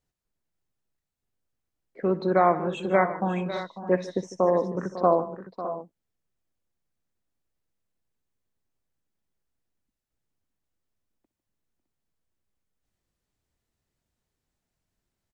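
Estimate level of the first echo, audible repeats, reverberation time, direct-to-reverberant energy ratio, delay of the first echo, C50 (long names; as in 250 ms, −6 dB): −17.0 dB, 4, no reverb audible, no reverb audible, 62 ms, no reverb audible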